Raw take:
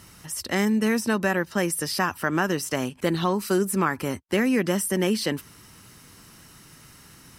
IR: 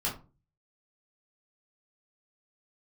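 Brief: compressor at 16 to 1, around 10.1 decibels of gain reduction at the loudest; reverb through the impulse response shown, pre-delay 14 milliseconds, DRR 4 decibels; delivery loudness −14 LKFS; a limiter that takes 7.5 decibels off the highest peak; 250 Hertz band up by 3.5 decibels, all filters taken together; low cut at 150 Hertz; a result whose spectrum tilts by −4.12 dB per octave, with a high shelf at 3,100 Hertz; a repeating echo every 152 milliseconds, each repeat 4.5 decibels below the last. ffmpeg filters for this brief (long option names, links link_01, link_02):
-filter_complex "[0:a]highpass=150,equalizer=frequency=250:width_type=o:gain=5.5,highshelf=frequency=3100:gain=7,acompressor=threshold=-25dB:ratio=16,alimiter=limit=-20.5dB:level=0:latency=1,aecho=1:1:152|304|456|608|760|912|1064|1216|1368:0.596|0.357|0.214|0.129|0.0772|0.0463|0.0278|0.0167|0.01,asplit=2[link_01][link_02];[1:a]atrim=start_sample=2205,adelay=14[link_03];[link_02][link_03]afir=irnorm=-1:irlink=0,volume=-10dB[link_04];[link_01][link_04]amix=inputs=2:normalize=0,volume=13.5dB"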